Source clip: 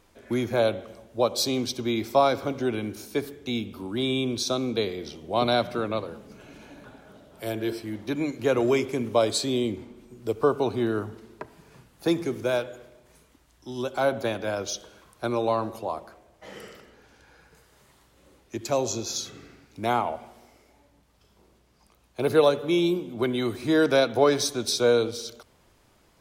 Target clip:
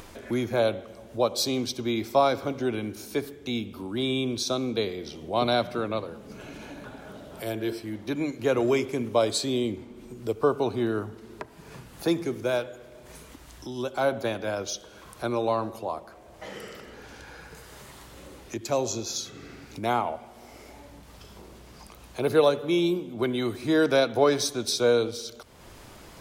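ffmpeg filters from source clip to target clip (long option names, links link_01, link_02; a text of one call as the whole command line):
ffmpeg -i in.wav -af "acompressor=mode=upward:threshold=-32dB:ratio=2.5,volume=-1dB" out.wav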